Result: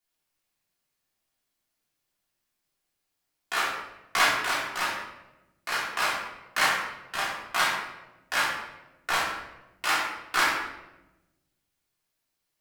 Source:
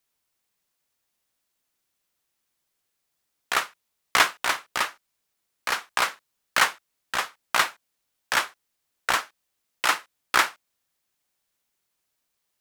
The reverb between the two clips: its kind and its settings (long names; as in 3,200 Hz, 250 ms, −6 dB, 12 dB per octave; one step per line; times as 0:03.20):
rectangular room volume 400 cubic metres, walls mixed, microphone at 3.3 metres
level −10 dB